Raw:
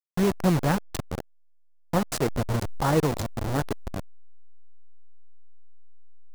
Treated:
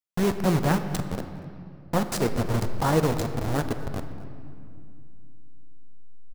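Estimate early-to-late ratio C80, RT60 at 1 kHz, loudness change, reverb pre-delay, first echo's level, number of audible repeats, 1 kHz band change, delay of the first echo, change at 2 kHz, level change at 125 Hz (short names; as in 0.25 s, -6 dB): 10.0 dB, 2.3 s, 0.0 dB, 4 ms, -20.0 dB, 1, +0.5 dB, 0.241 s, +0.5 dB, +0.5 dB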